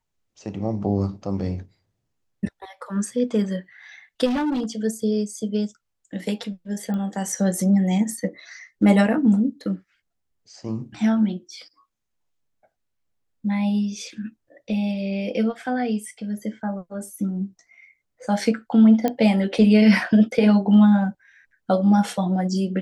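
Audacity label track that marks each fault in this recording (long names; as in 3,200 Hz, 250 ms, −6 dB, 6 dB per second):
4.250000	4.650000	clipping −20.5 dBFS
6.940000	6.940000	click −20 dBFS
19.080000	19.080000	click −10 dBFS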